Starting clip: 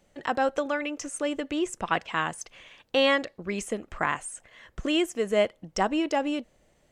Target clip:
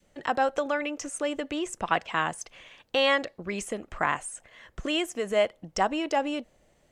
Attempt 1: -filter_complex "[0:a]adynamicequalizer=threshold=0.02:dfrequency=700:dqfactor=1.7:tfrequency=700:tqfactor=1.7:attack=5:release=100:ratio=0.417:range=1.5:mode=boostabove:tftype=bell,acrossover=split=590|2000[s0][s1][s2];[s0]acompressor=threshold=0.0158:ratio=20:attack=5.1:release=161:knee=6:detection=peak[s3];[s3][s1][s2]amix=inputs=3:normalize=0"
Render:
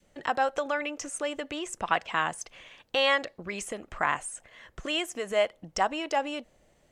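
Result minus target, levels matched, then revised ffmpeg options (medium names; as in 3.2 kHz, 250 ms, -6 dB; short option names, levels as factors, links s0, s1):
compression: peak gain reduction +7.5 dB
-filter_complex "[0:a]adynamicequalizer=threshold=0.02:dfrequency=700:dqfactor=1.7:tfrequency=700:tqfactor=1.7:attack=5:release=100:ratio=0.417:range=1.5:mode=boostabove:tftype=bell,acrossover=split=590|2000[s0][s1][s2];[s0]acompressor=threshold=0.0398:ratio=20:attack=5.1:release=161:knee=6:detection=peak[s3];[s3][s1][s2]amix=inputs=3:normalize=0"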